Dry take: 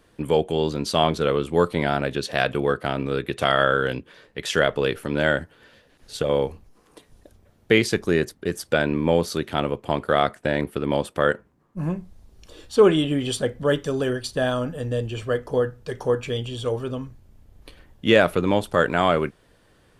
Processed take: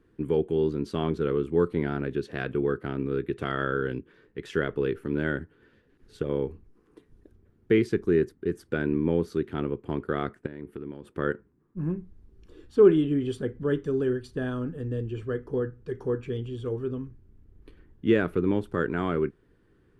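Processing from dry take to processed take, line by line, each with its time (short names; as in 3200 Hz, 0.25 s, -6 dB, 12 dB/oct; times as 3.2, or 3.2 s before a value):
10.46–11.07 compressor, threshold -30 dBFS
whole clip: EQ curve 210 Hz 0 dB, 400 Hz +4 dB, 590 Hz -14 dB, 1500 Hz -5 dB, 3800 Hz -15 dB, 6200 Hz -17 dB; gain -3.5 dB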